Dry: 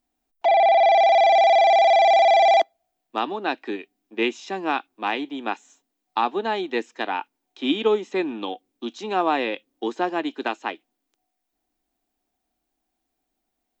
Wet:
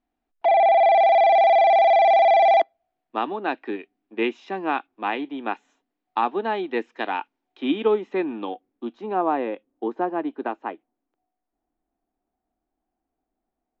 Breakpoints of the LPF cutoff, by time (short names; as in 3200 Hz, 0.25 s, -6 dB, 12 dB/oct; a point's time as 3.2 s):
6.88 s 2500 Hz
7.13 s 4200 Hz
7.75 s 2200 Hz
8.35 s 2200 Hz
9.16 s 1200 Hz